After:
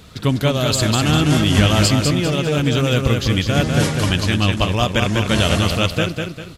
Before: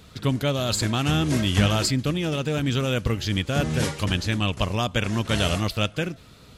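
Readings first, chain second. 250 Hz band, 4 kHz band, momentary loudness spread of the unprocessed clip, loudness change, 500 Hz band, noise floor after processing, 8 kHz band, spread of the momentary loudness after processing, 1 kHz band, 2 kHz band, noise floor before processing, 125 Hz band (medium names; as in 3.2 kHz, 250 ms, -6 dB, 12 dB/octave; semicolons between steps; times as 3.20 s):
+7.0 dB, +7.0 dB, 5 LU, +7.0 dB, +7.0 dB, -36 dBFS, +7.0 dB, 4 LU, +7.0 dB, +7.0 dB, -49 dBFS, +7.0 dB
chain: feedback delay 199 ms, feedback 36%, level -4.5 dB; trim +5.5 dB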